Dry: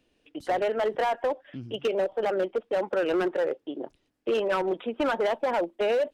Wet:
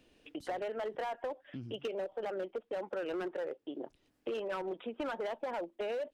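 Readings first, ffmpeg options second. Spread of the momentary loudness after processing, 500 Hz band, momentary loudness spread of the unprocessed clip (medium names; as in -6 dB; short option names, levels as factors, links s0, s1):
7 LU, -11.0 dB, 11 LU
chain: -af "acompressor=threshold=0.00447:ratio=2.5,volume=1.5"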